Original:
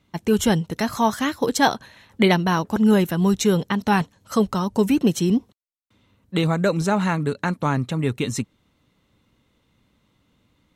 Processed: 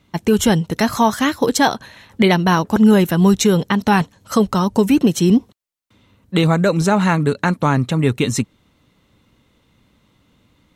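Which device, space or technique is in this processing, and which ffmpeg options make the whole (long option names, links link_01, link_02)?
clipper into limiter: -af "asoftclip=type=hard:threshold=-6.5dB,alimiter=limit=-11dB:level=0:latency=1:release=210,volume=6.5dB"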